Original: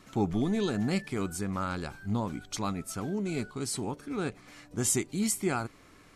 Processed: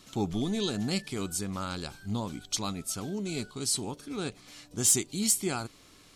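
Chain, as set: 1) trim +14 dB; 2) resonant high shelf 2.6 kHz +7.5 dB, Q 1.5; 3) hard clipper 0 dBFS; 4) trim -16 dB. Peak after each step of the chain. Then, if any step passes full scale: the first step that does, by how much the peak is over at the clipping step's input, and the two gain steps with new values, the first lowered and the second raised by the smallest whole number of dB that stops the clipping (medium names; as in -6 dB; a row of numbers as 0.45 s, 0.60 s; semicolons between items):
+1.5 dBFS, +9.5 dBFS, 0.0 dBFS, -16.0 dBFS; step 1, 9.5 dB; step 1 +4 dB, step 4 -6 dB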